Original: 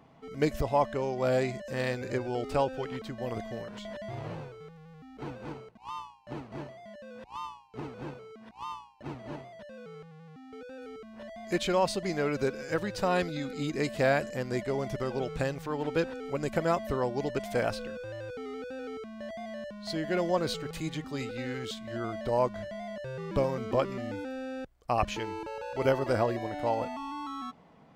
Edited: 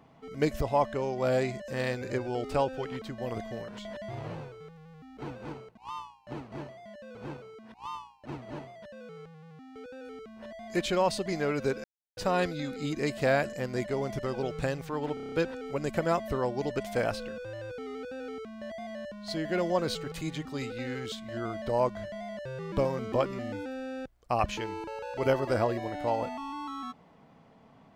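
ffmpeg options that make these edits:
-filter_complex "[0:a]asplit=10[a][b][c][d][e][f][g][h][i][j];[a]atrim=end=7.152[k];[b]atrim=start=7.918:end=12.61,asetpts=PTS-STARTPTS,afade=t=out:st=4.688:d=0.004:c=hsin[l];[c]atrim=start=12.61:end=12.94,asetpts=PTS-STARTPTS,volume=0[m];[d]atrim=start=12.94:end=15.942,asetpts=PTS-STARTPTS,afade=t=in:d=0.004:c=hsin[n];[e]atrim=start=15.908:end=15.942[o];[f]atrim=start=15.908:end=15.942[p];[g]atrim=start=15.908:end=15.942[q];[h]atrim=start=15.908:end=15.942[r];[i]atrim=start=15.908:end=15.942[s];[j]atrim=start=15.908[t];[l][m][n]concat=n=3:v=0:a=1[u];[k][u]acrossfade=d=0.004:c1=hsin:c2=hsin[v];[v][o]acrossfade=d=0.004:c1=hsin:c2=hsin[w];[w][p]acrossfade=d=0.004:c1=hsin:c2=hsin[x];[x][q]acrossfade=d=0.004:c1=hsin:c2=hsin[y];[y][r]acrossfade=d=0.004:c1=hsin:c2=hsin[z];[z][s]acrossfade=d=0.004:c1=hsin:c2=hsin[aa];[aa][t]acrossfade=d=0.004:c1=hsin:c2=hsin"

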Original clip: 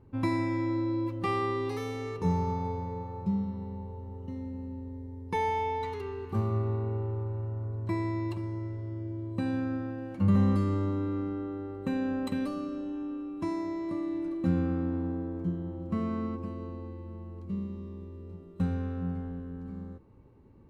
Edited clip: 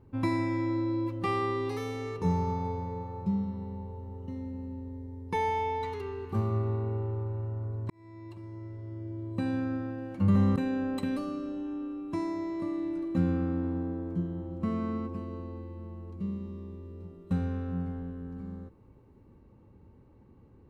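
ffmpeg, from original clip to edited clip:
-filter_complex "[0:a]asplit=3[a][b][c];[a]atrim=end=7.9,asetpts=PTS-STARTPTS,afade=t=out:st=7.896:d=0.004:c=hsin[d];[b]atrim=start=7.9:end=10.562,asetpts=PTS-STARTPTS,afade=t=in:d=1.49[e];[c]atrim=start=11.848[f];[d][e]concat=n=2:v=0:a=1[g];[g][f]acrossfade=d=0.004:c1=hsin:c2=hsin"

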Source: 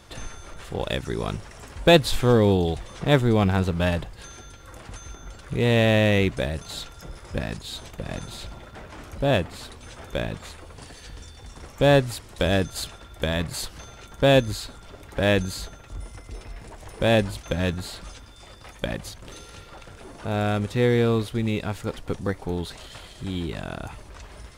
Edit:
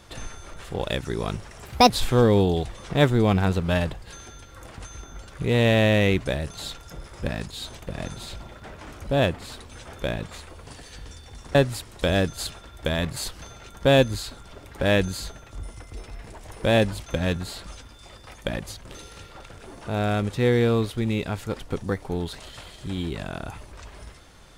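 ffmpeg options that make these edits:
-filter_complex "[0:a]asplit=4[a][b][c][d];[a]atrim=end=1.654[e];[b]atrim=start=1.65:end=2.01,asetpts=PTS-STARTPTS,asetrate=63945,aresample=44100[f];[c]atrim=start=2.006:end=11.662[g];[d]atrim=start=11.918[h];[e][f]acrossfade=d=0.004:c1=hsin:c2=hsin[i];[i][g]acrossfade=d=0.004:c1=hsin:c2=hsin[j];[j][h]acrossfade=d=0.004:c1=hsin:c2=hsin"

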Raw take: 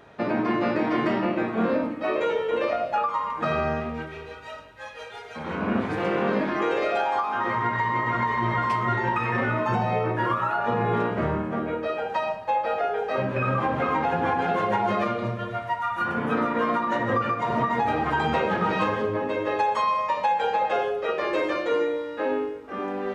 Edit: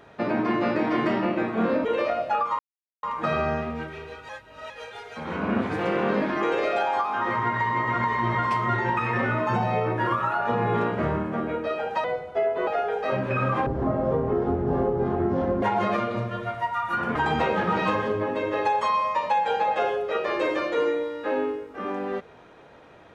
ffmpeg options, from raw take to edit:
-filter_complex "[0:a]asplit=10[a][b][c][d][e][f][g][h][i][j];[a]atrim=end=1.852[k];[b]atrim=start=2.478:end=3.22,asetpts=PTS-STARTPTS,afade=t=out:st=0.738:d=0.004:c=hsin,apad=pad_dur=0.44[l];[c]atrim=start=3.22:end=4.482,asetpts=PTS-STARTPTS,afade=t=in:d=0.004:c=hsin[m];[d]atrim=start=4.478:end=4.892,asetpts=PTS-STARTPTS,areverse[n];[e]atrim=start=4.888:end=12.234[o];[f]atrim=start=12.23:end=12.73,asetpts=PTS-STARTPTS,asetrate=34839,aresample=44100,atrim=end_sample=27911,asetpts=PTS-STARTPTS[p];[g]atrim=start=12.726:end=13.724[q];[h]atrim=start=13.72:end=14.7,asetpts=PTS-STARTPTS,asetrate=22050,aresample=44100[r];[i]atrim=start=14.696:end=16.232[s];[j]atrim=start=18.088[t];[l][m]concat=n=2:v=0:a=1[u];[k][u]acrossfade=d=0.004:c1=hsin:c2=hsin[v];[v][n]acrossfade=d=0.004:c1=hsin:c2=hsin[w];[w][o]acrossfade=d=0.004:c1=hsin:c2=hsin[x];[x][p]acrossfade=d=0.004:c1=hsin:c2=hsin[y];[y][q]acrossfade=d=0.004:c1=hsin:c2=hsin[z];[z][r]acrossfade=d=0.004:c1=hsin:c2=hsin[aa];[aa][s]acrossfade=d=0.004:c1=hsin:c2=hsin[ab];[ab][t]acrossfade=d=0.004:c1=hsin:c2=hsin"

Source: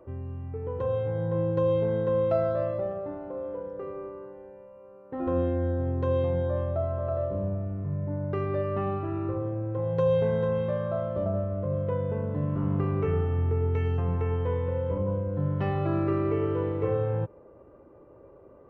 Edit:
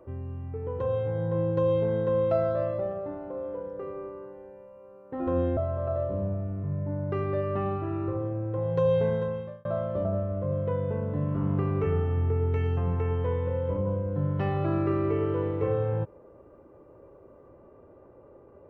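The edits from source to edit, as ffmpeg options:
-filter_complex "[0:a]asplit=3[a][b][c];[a]atrim=end=5.572[d];[b]atrim=start=6.778:end=10.86,asetpts=PTS-STARTPTS,afade=t=out:st=3.512:d=0.57[e];[c]atrim=start=10.86,asetpts=PTS-STARTPTS,afade=t=in:d=0.004:c=hsin[f];[e][f]concat=n=2:v=0:a=1[g];[d][g]acrossfade=d=0.004:c1=hsin:c2=hsin"

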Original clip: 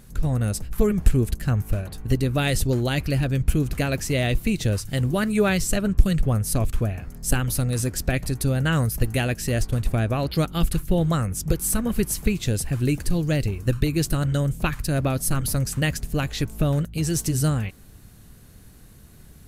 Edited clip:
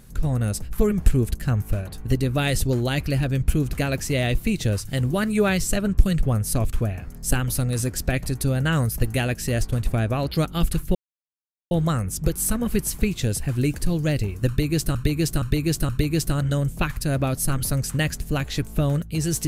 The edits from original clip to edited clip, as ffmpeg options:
-filter_complex "[0:a]asplit=5[a][b][c][d][e];[a]atrim=end=10.95,asetpts=PTS-STARTPTS,afade=t=out:st=10.946:d=0.004:c=hsin,apad=pad_dur=0.76[f];[b]atrim=start=10.95:end=14.192,asetpts=PTS-STARTPTS,afade=t=in:d=0.004:c=hsin[g];[c]atrim=start=13.718:end=14.192[h];[d]atrim=start=13.718:end=14.192[i];[e]atrim=start=13.718[j];[f][g]concat=n=2:v=0:a=1[k];[k][h]acrossfade=d=0.004:c1=hsin:c2=hsin[l];[l][i]acrossfade=d=0.004:c1=hsin:c2=hsin[m];[m][j]acrossfade=d=0.004:c1=hsin:c2=hsin"

